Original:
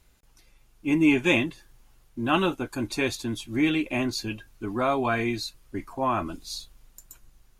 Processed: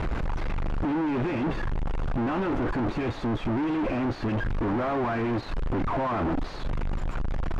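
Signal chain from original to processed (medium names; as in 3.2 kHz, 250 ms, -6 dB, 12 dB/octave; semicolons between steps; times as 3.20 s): one-bit comparator; low-pass 1.3 kHz 12 dB/octave; trim +3 dB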